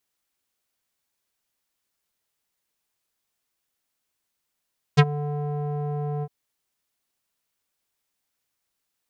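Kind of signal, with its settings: synth note square D3 12 dB/octave, low-pass 690 Hz, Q 1.8, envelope 3.5 oct, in 0.07 s, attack 22 ms, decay 0.05 s, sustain -18 dB, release 0.05 s, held 1.26 s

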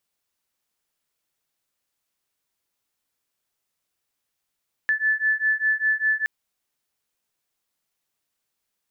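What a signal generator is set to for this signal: beating tones 1.74 kHz, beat 5 Hz, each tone -22.5 dBFS 1.37 s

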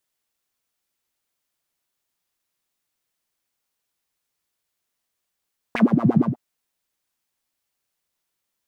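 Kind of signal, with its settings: synth patch with filter wobble A#3, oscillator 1 triangle, oscillator 2 saw, interval -12 st, oscillator 2 level -8 dB, noise -22 dB, filter bandpass, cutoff 320 Hz, Q 6.1, filter envelope 1.5 oct, filter decay 0.17 s, filter sustain 20%, attack 2.5 ms, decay 0.10 s, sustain -9 dB, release 0.13 s, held 0.48 s, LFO 8.6 Hz, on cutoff 1.6 oct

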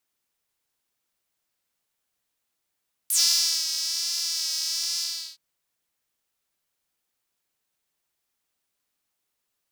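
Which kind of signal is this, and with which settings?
synth patch with vibrato E4, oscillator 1 saw, detune 24 cents, sub -24 dB, noise -26.5 dB, filter highpass, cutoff 4.4 kHz, Q 5, filter envelope 1.5 oct, filter decay 0.09 s, filter sustain 15%, attack 4.4 ms, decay 0.54 s, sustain -9.5 dB, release 0.38 s, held 1.89 s, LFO 1.2 Hz, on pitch 44 cents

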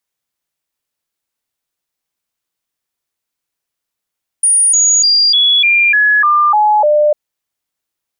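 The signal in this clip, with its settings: stepped sine 9.57 kHz down, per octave 2, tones 9, 0.30 s, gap 0.00 s -7 dBFS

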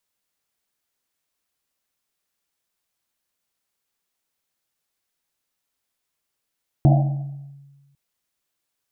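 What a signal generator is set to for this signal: Risset drum, pitch 140 Hz, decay 1.40 s, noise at 690 Hz, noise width 200 Hz, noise 20%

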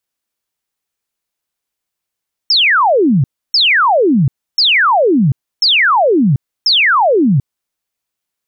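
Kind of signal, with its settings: burst of laser zaps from 5.5 kHz, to 120 Hz, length 0.74 s sine, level -7.5 dB, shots 5, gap 0.30 s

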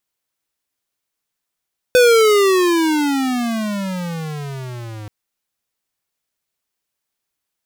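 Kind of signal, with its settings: gliding synth tone square, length 3.13 s, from 505 Hz, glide -27.5 st, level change -22 dB, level -9.5 dB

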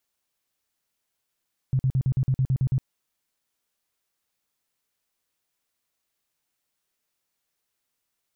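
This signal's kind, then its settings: tone bursts 131 Hz, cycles 8, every 0.11 s, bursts 10, -18.5 dBFS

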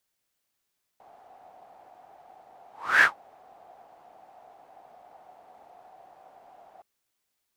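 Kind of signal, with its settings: whoosh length 5.82 s, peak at 2.03 s, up 0.34 s, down 0.13 s, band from 740 Hz, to 1.7 kHz, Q 8.4, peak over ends 36 dB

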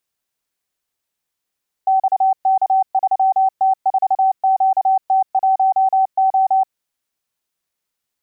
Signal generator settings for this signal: Morse "XK3T4QT1O" 29 wpm 766 Hz -11 dBFS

